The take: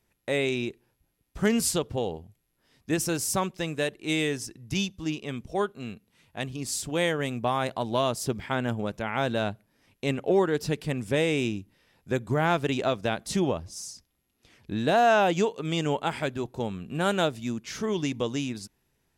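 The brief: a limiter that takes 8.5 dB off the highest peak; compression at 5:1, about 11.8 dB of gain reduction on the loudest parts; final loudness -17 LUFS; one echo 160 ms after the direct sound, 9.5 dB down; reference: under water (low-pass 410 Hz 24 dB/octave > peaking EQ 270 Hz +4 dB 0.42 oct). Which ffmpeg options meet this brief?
-af "acompressor=threshold=0.0282:ratio=5,alimiter=level_in=1.5:limit=0.0631:level=0:latency=1,volume=0.668,lowpass=f=410:w=0.5412,lowpass=f=410:w=1.3066,equalizer=f=270:t=o:w=0.42:g=4,aecho=1:1:160:0.335,volume=14.1"

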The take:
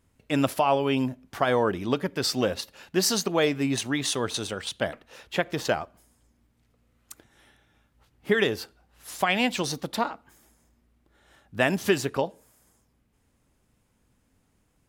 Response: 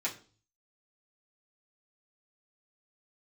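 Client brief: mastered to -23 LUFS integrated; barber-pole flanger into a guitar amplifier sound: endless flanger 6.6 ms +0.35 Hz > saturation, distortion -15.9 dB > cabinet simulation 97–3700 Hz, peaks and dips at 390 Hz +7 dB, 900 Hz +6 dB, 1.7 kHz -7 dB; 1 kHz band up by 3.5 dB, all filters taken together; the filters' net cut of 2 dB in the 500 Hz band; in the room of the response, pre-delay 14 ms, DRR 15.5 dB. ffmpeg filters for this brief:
-filter_complex "[0:a]equalizer=f=500:t=o:g=-8.5,equalizer=f=1000:t=o:g=3.5,asplit=2[s0][s1];[1:a]atrim=start_sample=2205,adelay=14[s2];[s1][s2]afir=irnorm=-1:irlink=0,volume=0.1[s3];[s0][s3]amix=inputs=2:normalize=0,asplit=2[s4][s5];[s5]adelay=6.6,afreqshift=0.35[s6];[s4][s6]amix=inputs=2:normalize=1,asoftclip=threshold=0.0891,highpass=97,equalizer=f=390:t=q:w=4:g=7,equalizer=f=900:t=q:w=4:g=6,equalizer=f=1700:t=q:w=4:g=-7,lowpass=f=3700:w=0.5412,lowpass=f=3700:w=1.3066,volume=2.99"

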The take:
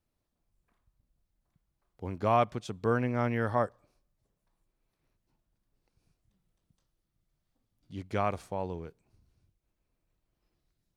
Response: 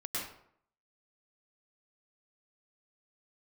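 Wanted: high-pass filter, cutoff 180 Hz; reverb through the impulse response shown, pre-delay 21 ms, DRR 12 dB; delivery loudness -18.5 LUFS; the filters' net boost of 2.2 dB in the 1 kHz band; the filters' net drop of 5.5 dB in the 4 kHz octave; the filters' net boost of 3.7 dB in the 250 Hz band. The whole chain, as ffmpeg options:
-filter_complex "[0:a]highpass=180,equalizer=f=250:t=o:g=5.5,equalizer=f=1000:t=o:g=3,equalizer=f=4000:t=o:g=-8,asplit=2[s0][s1];[1:a]atrim=start_sample=2205,adelay=21[s2];[s1][s2]afir=irnorm=-1:irlink=0,volume=0.168[s3];[s0][s3]amix=inputs=2:normalize=0,volume=3.55"

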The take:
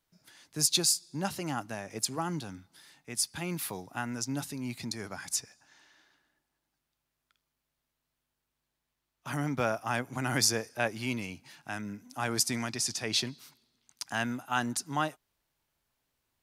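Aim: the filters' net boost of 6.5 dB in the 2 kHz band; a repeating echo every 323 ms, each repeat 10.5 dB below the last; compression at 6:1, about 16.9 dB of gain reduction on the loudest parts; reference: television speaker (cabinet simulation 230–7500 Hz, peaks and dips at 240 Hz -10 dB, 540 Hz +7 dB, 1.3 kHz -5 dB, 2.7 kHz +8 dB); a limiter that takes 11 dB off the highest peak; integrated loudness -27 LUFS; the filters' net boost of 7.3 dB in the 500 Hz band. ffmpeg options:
-af "equalizer=f=500:t=o:g=4.5,equalizer=f=2000:t=o:g=7,acompressor=threshold=0.0112:ratio=6,alimiter=level_in=2.37:limit=0.0631:level=0:latency=1,volume=0.422,highpass=f=230:w=0.5412,highpass=f=230:w=1.3066,equalizer=f=240:t=q:w=4:g=-10,equalizer=f=540:t=q:w=4:g=7,equalizer=f=1300:t=q:w=4:g=-5,equalizer=f=2700:t=q:w=4:g=8,lowpass=f=7500:w=0.5412,lowpass=f=7500:w=1.3066,aecho=1:1:323|646|969:0.299|0.0896|0.0269,volume=7.5"

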